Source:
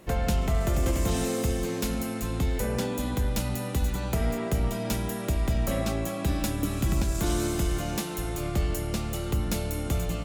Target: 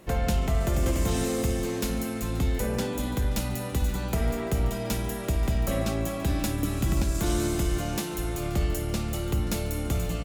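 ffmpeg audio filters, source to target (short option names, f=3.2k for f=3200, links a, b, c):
-af "aecho=1:1:54|530:0.188|0.126"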